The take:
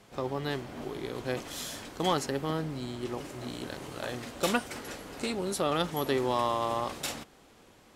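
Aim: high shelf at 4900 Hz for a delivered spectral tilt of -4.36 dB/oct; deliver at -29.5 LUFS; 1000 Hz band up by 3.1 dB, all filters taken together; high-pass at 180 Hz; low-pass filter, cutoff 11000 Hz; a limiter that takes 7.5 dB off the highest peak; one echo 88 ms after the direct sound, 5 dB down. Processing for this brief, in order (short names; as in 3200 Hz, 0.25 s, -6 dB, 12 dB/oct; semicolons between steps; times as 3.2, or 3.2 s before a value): HPF 180 Hz; LPF 11000 Hz; bell 1000 Hz +4 dB; high shelf 4900 Hz -5.5 dB; limiter -19.5 dBFS; echo 88 ms -5 dB; gain +3.5 dB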